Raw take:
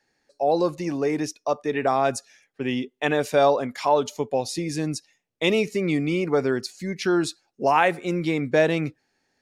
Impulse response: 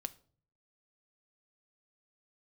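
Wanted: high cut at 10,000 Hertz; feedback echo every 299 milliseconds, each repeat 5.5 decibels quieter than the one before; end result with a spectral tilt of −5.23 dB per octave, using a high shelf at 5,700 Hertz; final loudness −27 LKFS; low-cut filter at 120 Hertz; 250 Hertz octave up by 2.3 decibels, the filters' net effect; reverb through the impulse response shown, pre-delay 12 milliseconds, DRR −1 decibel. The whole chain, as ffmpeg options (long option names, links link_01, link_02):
-filter_complex "[0:a]highpass=120,lowpass=10000,equalizer=frequency=250:width_type=o:gain=3.5,highshelf=frequency=5700:gain=-8.5,aecho=1:1:299|598|897|1196|1495|1794|2093:0.531|0.281|0.149|0.079|0.0419|0.0222|0.0118,asplit=2[link_01][link_02];[1:a]atrim=start_sample=2205,adelay=12[link_03];[link_02][link_03]afir=irnorm=-1:irlink=0,volume=3dB[link_04];[link_01][link_04]amix=inputs=2:normalize=0,volume=-8.5dB"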